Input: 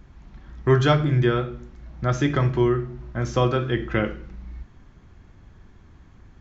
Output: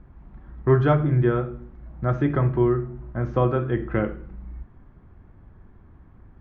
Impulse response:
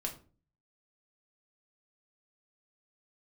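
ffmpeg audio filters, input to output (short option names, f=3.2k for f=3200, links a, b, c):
-af "lowpass=1.4k"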